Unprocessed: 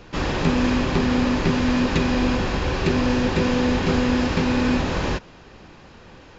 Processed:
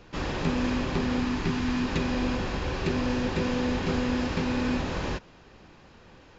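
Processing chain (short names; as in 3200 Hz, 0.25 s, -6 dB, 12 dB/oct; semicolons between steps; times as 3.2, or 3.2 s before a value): 1.2–1.88 bell 550 Hz -14 dB 0.28 oct; gain -7 dB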